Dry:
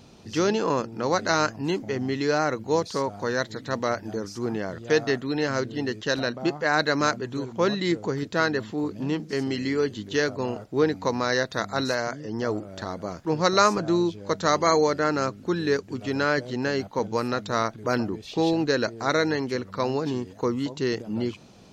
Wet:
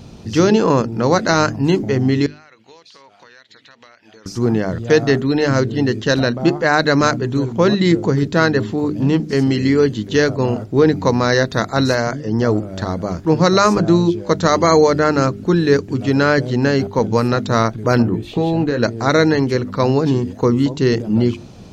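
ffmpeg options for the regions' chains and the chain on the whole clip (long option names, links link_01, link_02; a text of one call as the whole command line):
ffmpeg -i in.wav -filter_complex "[0:a]asettb=1/sr,asplit=3[link_01][link_02][link_03];[link_01]atrim=end=2.264[link_04];[link_02]atrim=start=2.26:end=4.26,asetpts=PTS-STARTPTS,afade=type=in:duration=0.004:curve=qsin,afade=type=out:start_time=1.996:duration=0.004:curve=qsin,bandpass=frequency=2800:width_type=q:width=2,acompressor=threshold=-48dB:ratio=10:attack=3.2:release=140:knee=1:detection=peak[link_05];[link_03]atrim=start=4.256[link_06];[link_04][link_05]acrossfade=duration=0.004:curve1=hsin:curve2=qsin[link_07];[link_07][link_06]acrossfade=duration=0.004:curve1=qsin:curve2=hsin,asettb=1/sr,asplit=3[link_08][link_09][link_10];[link_08]atrim=end=18.024[link_11];[link_09]atrim=start=18.02:end=18.83,asetpts=PTS-STARTPTS,afade=type=in:duration=0.004:curve=qsin,afade=type=out:start_time=0.806:duration=0.004:curve=qsin,asplit=2[link_12][link_13];[link_13]adelay=17,volume=-8dB[link_14];[link_12][link_14]amix=inputs=2:normalize=0,atrim=end_sample=35721,acompressor=threshold=-24dB:ratio=6:attack=3.2:release=140:knee=1:detection=peak,equalizer=frequency=5400:width=1.7:gain=-12.5[link_15];[link_10]atrim=start=18.826[link_16];[link_11][link_15]acrossfade=duration=0.004:curve1=hsin:curve2=qsin[link_17];[link_17][link_16]acrossfade=duration=0.004:curve1=qsin:curve2=hsin,lowshelf=frequency=260:gain=11.5,bandreject=frequency=50:width_type=h:width=6,bandreject=frequency=100:width_type=h:width=6,bandreject=frequency=150:width_type=h:width=6,bandreject=frequency=200:width_type=h:width=6,bandreject=frequency=250:width_type=h:width=6,bandreject=frequency=300:width_type=h:width=6,bandreject=frequency=350:width_type=h:width=6,bandreject=frequency=400:width_type=h:width=6,alimiter=level_in=8dB:limit=-1dB:release=50:level=0:latency=1,volume=-1dB" out.wav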